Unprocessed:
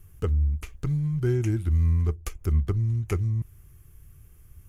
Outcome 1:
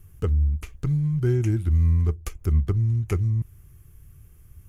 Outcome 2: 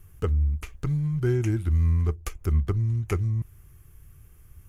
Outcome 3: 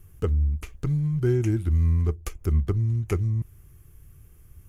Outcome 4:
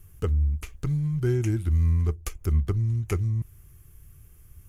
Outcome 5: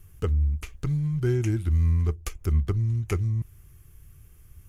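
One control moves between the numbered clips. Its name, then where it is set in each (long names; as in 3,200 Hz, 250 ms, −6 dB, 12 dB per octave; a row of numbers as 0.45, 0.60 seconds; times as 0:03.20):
parametric band, centre frequency: 130, 1,200, 340, 13,000, 4,000 Hertz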